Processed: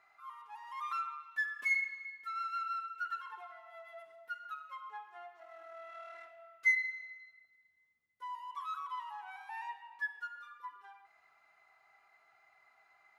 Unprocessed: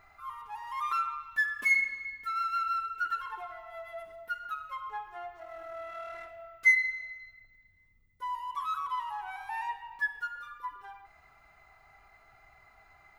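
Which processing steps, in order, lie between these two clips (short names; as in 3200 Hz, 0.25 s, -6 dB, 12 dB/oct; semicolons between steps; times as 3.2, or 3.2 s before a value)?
weighting filter A; gain -7.5 dB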